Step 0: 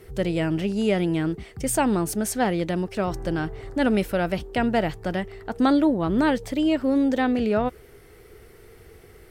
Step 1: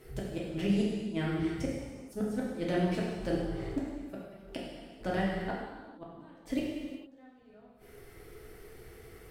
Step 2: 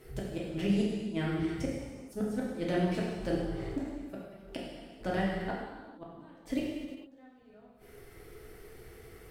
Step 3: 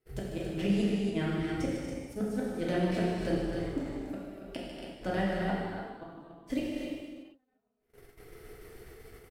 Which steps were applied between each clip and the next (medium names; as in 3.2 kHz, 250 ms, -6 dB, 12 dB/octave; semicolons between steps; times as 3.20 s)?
inverted gate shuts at -16 dBFS, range -33 dB; gated-style reverb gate 490 ms falling, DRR -5 dB; trim -8 dB
endings held to a fixed fall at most 210 dB/s
gate -50 dBFS, range -26 dB; loudspeakers at several distances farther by 51 m -9 dB, 82 m -9 dB, 96 m -7 dB